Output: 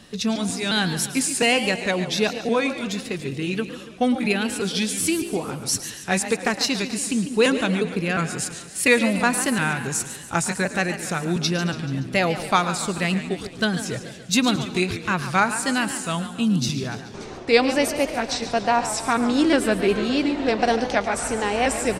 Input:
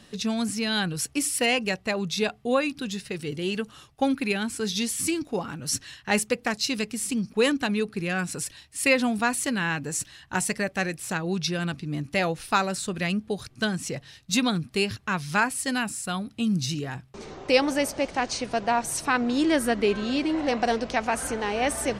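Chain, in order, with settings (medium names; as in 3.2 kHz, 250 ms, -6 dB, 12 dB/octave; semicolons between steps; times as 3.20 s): pitch shift switched off and on -1.5 st, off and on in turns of 355 ms; frequency-shifting echo 109 ms, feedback 48%, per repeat +57 Hz, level -15.5 dB; modulated delay 143 ms, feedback 55%, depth 164 cents, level -12 dB; trim +4 dB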